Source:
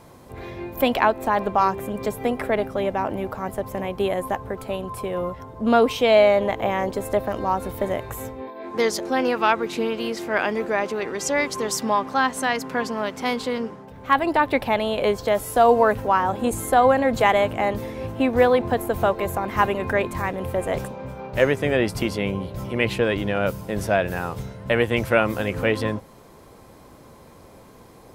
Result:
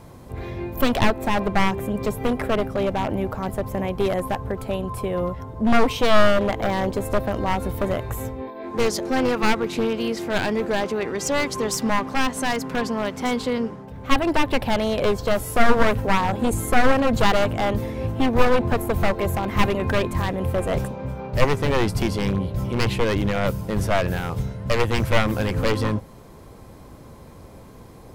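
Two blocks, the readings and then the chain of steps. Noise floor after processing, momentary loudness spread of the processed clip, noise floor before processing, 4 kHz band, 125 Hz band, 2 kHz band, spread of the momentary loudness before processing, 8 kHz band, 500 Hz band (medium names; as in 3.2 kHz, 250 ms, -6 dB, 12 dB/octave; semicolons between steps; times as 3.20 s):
-44 dBFS, 8 LU, -48 dBFS, +2.5 dB, +6.0 dB, -0.5 dB, 11 LU, +1.0 dB, -2.0 dB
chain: one-sided wavefolder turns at -18 dBFS; bass shelf 190 Hz +9.5 dB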